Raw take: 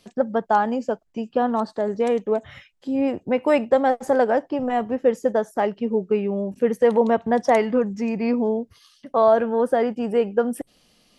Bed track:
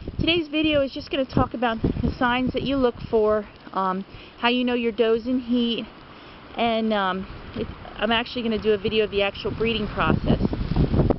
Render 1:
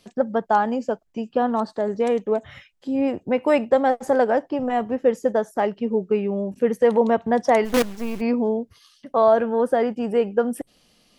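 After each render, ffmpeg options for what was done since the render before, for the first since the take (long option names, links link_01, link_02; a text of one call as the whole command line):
ffmpeg -i in.wav -filter_complex "[0:a]asplit=3[link_01][link_02][link_03];[link_01]afade=type=out:start_time=7.64:duration=0.02[link_04];[link_02]acrusher=bits=4:dc=4:mix=0:aa=0.000001,afade=type=in:start_time=7.64:duration=0.02,afade=type=out:start_time=8.2:duration=0.02[link_05];[link_03]afade=type=in:start_time=8.2:duration=0.02[link_06];[link_04][link_05][link_06]amix=inputs=3:normalize=0" out.wav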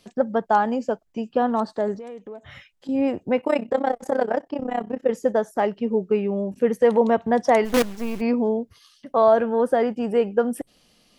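ffmpeg -i in.wav -filter_complex "[0:a]asettb=1/sr,asplit=3[link_01][link_02][link_03];[link_01]atrim=end=1.984[link_04];[link_02]atrim=start=1.98:end=2.89,asetpts=PTS-STARTPTS,afade=type=in:duration=0.004:curve=qsin,afade=type=out:start_time=0.906:duration=0.004:curve=qsin,acompressor=threshold=-37dB:ratio=4:attack=3.2:release=140:knee=1:detection=peak[link_05];[link_03]atrim=start=2.886[link_06];[link_04][link_05]acrossfade=duration=0.004:curve1=hsin:curve2=qsin[link_07];[link_07][link_06]acrossfade=duration=0.004:curve1=qsin:curve2=hsin,asplit=3[link_08][link_09][link_10];[link_08]afade=type=out:start_time=3.4:duration=0.02[link_11];[link_09]tremolo=f=32:d=0.889,afade=type=in:start_time=3.4:duration=0.02,afade=type=out:start_time=5.09:duration=0.02[link_12];[link_10]afade=type=in:start_time=5.09:duration=0.02[link_13];[link_11][link_12][link_13]amix=inputs=3:normalize=0" out.wav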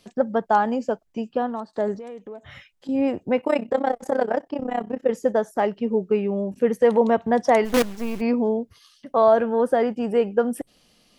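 ffmpeg -i in.wav -filter_complex "[0:a]asplit=2[link_01][link_02];[link_01]atrim=end=1.73,asetpts=PTS-STARTPTS,afade=type=out:start_time=1.22:duration=0.51:silence=0.149624[link_03];[link_02]atrim=start=1.73,asetpts=PTS-STARTPTS,afade=type=in:duration=0.004:curve=hsin:silence=0.149624[link_04];[link_03][link_04]concat=n=2:v=0:a=1" out.wav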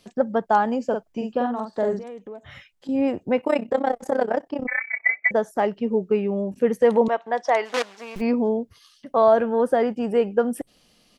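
ffmpeg -i in.wav -filter_complex "[0:a]asplit=3[link_01][link_02][link_03];[link_01]afade=type=out:start_time=0.91:duration=0.02[link_04];[link_02]asplit=2[link_05][link_06];[link_06]adelay=46,volume=-4dB[link_07];[link_05][link_07]amix=inputs=2:normalize=0,afade=type=in:start_time=0.91:duration=0.02,afade=type=out:start_time=2.03:duration=0.02[link_08];[link_03]afade=type=in:start_time=2.03:duration=0.02[link_09];[link_04][link_08][link_09]amix=inputs=3:normalize=0,asettb=1/sr,asplit=3[link_10][link_11][link_12];[link_10]atrim=end=4.674[link_13];[link_11]atrim=start=4.67:end=5.31,asetpts=PTS-STARTPTS,afade=type=in:duration=0.004:curve=qsin,afade=type=out:start_time=0.636:duration=0.004:curve=qsin,lowpass=frequency=2100:width_type=q:width=0.5098,lowpass=frequency=2100:width_type=q:width=0.6013,lowpass=frequency=2100:width_type=q:width=0.9,lowpass=frequency=2100:width_type=q:width=2.563,afreqshift=-2500[link_14];[link_12]atrim=start=5.306[link_15];[link_13][link_14]acrossfade=duration=0.004:curve1=hsin:curve2=qsin[link_16];[link_16][link_15]acrossfade=duration=0.004:curve1=qsin:curve2=hsin,asettb=1/sr,asplit=3[link_17][link_18][link_19];[link_17]atrim=end=7.084[link_20];[link_18]atrim=start=7.08:end=8.16,asetpts=PTS-STARTPTS,afade=type=in:duration=0.004:curve=qsin,afade=type=out:start_time=1.076:duration=0.004:curve=qsin,highpass=610,lowpass=5900[link_21];[link_19]atrim=start=8.156[link_22];[link_20][link_21]acrossfade=duration=0.004:curve1=hsin:curve2=qsin[link_23];[link_23][link_22]acrossfade=duration=0.004:curve1=qsin:curve2=hsin" out.wav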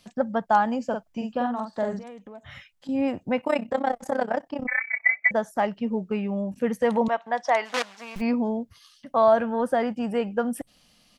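ffmpeg -i in.wav -af "equalizer=frequency=400:width=2.2:gain=-10.5" out.wav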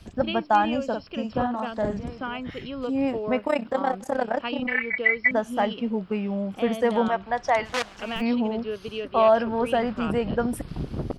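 ffmpeg -i in.wav -i bed.wav -filter_complex "[1:a]volume=-11dB[link_01];[0:a][link_01]amix=inputs=2:normalize=0" out.wav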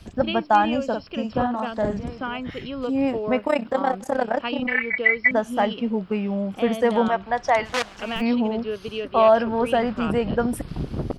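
ffmpeg -i in.wav -af "volume=2.5dB" out.wav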